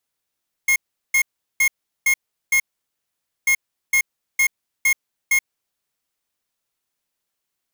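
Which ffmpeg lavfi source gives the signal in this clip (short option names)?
-f lavfi -i "aevalsrc='0.158*(2*lt(mod(2150*t,1),0.5)-1)*clip(min(mod(mod(t,2.79),0.46),0.08-mod(mod(t,2.79),0.46))/0.005,0,1)*lt(mod(t,2.79),2.3)':d=5.58:s=44100"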